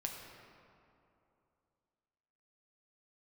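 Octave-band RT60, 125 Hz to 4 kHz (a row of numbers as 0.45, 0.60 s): 2.9, 2.9, 2.8, 2.7, 2.0, 1.4 s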